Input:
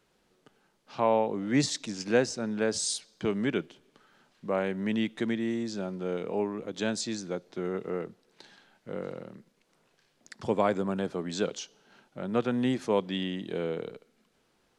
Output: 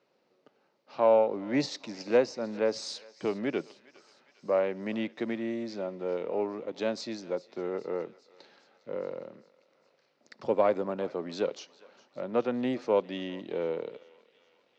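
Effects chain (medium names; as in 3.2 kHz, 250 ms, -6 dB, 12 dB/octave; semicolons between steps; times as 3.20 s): partial rectifier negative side -3 dB; cabinet simulation 190–5100 Hz, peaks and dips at 190 Hz -4 dB, 560 Hz +7 dB, 1.6 kHz -5 dB, 3.3 kHz -7 dB; thinning echo 407 ms, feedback 70%, high-pass 1.1 kHz, level -19 dB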